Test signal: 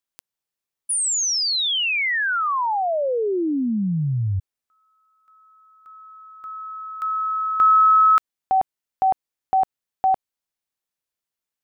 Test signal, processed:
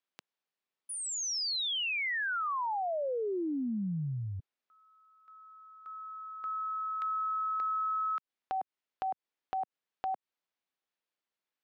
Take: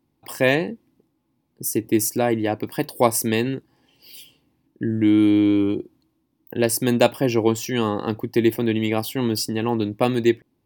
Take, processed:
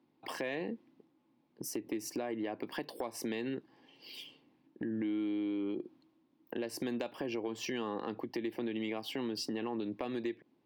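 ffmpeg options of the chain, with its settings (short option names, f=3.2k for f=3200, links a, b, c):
-filter_complex "[0:a]acrossover=split=170 4700:gain=0.0891 1 0.126[a][b][c];[a][b][c]amix=inputs=3:normalize=0,acompressor=threshold=-31dB:ratio=12:attack=1.2:release=202:knee=6:detection=peak"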